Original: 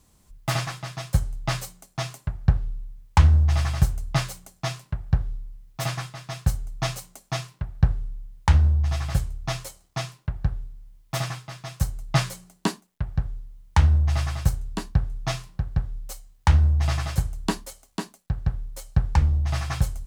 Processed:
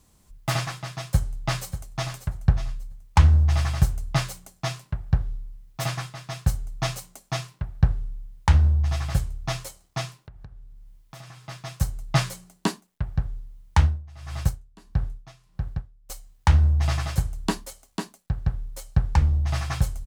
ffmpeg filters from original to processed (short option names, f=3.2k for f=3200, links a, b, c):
-filter_complex "[0:a]asplit=2[a][b];[b]afade=t=in:st=1.06:d=0.01,afade=t=out:st=2.13:d=0.01,aecho=0:1:590|1180|1770:0.266073|0.0665181|0.0166295[c];[a][c]amix=inputs=2:normalize=0,asettb=1/sr,asplit=3[d][e][f];[d]atrim=end=10.174[g];[e]atrim=start=10.17:end=11.45,asetpts=PTS-STARTPTS,afade=t=in:d=0.004:c=qsin,afade=t=out:st=1.276:d=0.004:c=qsin,acompressor=threshold=-43dB:ratio=4:attack=3.2:release=140:knee=1:detection=peak[h];[f]atrim=start=11.446[i];[g][h]acrossfade=d=0.004:c1=hsin:c2=qsin[j];[j][i]acrossfade=d=0.004:c1=qsin:c2=hsin,asettb=1/sr,asplit=3[k][l][m];[k]atrim=end=13.794[n];[l]atrim=start=13.79:end=16.1,asetpts=PTS-STARTPTS,afade=t=in:d=0.004:c=qsin,afade=t=out:st=2.306:d=0.004:c=qsin,aeval=exprs='val(0)*pow(10,-23*(0.5-0.5*cos(2*PI*1.6*n/s))/20)':c=same[o];[m]atrim=start=16.096[p];[n][o]acrossfade=d=0.004:c1=hsin:c2=qsin[q];[q][p]acrossfade=d=0.004:c1=qsin:c2=hsin"